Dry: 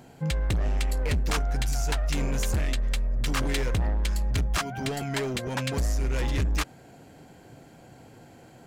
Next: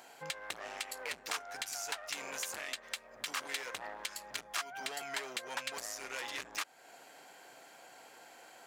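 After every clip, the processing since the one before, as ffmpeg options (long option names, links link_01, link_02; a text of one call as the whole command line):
ffmpeg -i in.wav -af "highpass=840,acompressor=threshold=-44dB:ratio=2,volume=2.5dB" out.wav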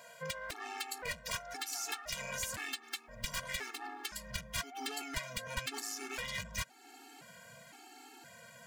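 ffmpeg -i in.wav -af "aeval=exprs='0.0299*(abs(mod(val(0)/0.0299+3,4)-2)-1)':channel_layout=same,asubboost=boost=7:cutoff=190,afftfilt=real='re*gt(sin(2*PI*0.97*pts/sr)*(1-2*mod(floor(b*sr/1024/230),2)),0)':imag='im*gt(sin(2*PI*0.97*pts/sr)*(1-2*mod(floor(b*sr/1024/230),2)),0)':win_size=1024:overlap=0.75,volume=5dB" out.wav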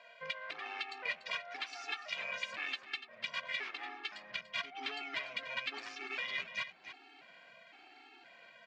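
ffmpeg -i in.wav -filter_complex "[0:a]asplit=2[link_01][link_02];[link_02]aeval=exprs='sgn(val(0))*max(abs(val(0))-0.00251,0)':channel_layout=same,volume=-6dB[link_03];[link_01][link_03]amix=inputs=2:normalize=0,highpass=410,equalizer=frequency=500:width_type=q:width=4:gain=-6,equalizer=frequency=900:width_type=q:width=4:gain=-6,equalizer=frequency=1500:width_type=q:width=4:gain=-4,equalizer=frequency=2400:width_type=q:width=4:gain=4,lowpass=frequency=3800:width=0.5412,lowpass=frequency=3800:width=1.3066,aecho=1:1:291:0.251,volume=-1dB" out.wav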